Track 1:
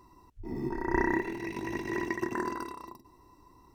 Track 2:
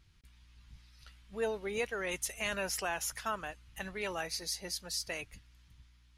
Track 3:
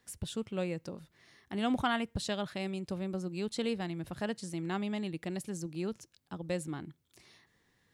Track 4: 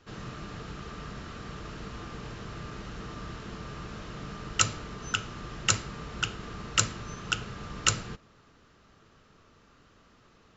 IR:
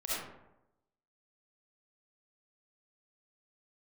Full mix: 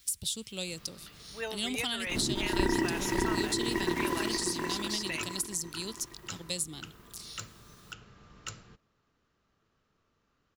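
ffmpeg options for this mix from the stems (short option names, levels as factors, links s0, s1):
-filter_complex "[0:a]aeval=exprs='val(0)*gte(abs(val(0)),0.0141)':c=same,adelay=1650,volume=1.33,asplit=2[s0][s1];[s1]volume=0.631[s2];[1:a]equalizer=f=3200:w=0.33:g=15,volume=0.376[s3];[2:a]highshelf=f=2500:t=q:w=1.5:g=14,crystalizer=i=2.5:c=0,volume=0.501[s4];[3:a]asoftclip=type=tanh:threshold=0.335,adelay=600,volume=0.168[s5];[s2]aecho=0:1:590|1180|1770|2360|2950|3540:1|0.42|0.176|0.0741|0.0311|0.0131[s6];[s0][s3][s4][s5][s6]amix=inputs=5:normalize=0,acrossover=split=380[s7][s8];[s8]acompressor=threshold=0.0316:ratio=5[s9];[s7][s9]amix=inputs=2:normalize=0"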